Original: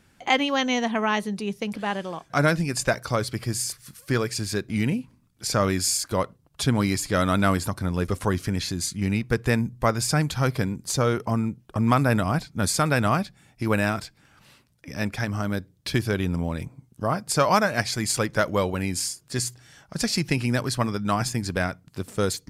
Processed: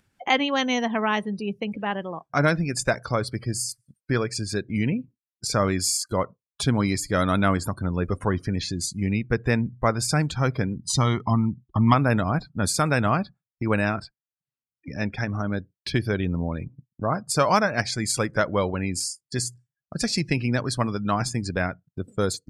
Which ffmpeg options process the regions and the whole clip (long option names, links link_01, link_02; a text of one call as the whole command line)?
ffmpeg -i in.wav -filter_complex "[0:a]asettb=1/sr,asplit=3[link_01][link_02][link_03];[link_01]atrim=end=10.764[link_04];[link_02]atrim=start=10.76:end=11.94,asetpts=PTS-STARTPTS,afade=type=in:duration=0.004:curve=qsin,afade=type=out:start_time=1.176:duration=0.004:curve=qsin,lowpass=11000,equalizer=frequency=3600:width=2.4:gain=6,aecho=1:1:1:0.69,atrim=end_sample=52038[link_05];[link_03]atrim=start=11.936[link_06];[link_04][link_05]acrossfade=duration=0.004:curve1=hsin:curve2=qsin[link_07];[link_07][link_06]acrossfade=duration=0.004:curve1=qsin:curve2=hsin,afftdn=noise_reduction=31:noise_floor=-38,agate=range=-33dB:threshold=-38dB:ratio=3:detection=peak,acompressor=mode=upward:threshold=-30dB:ratio=2.5" out.wav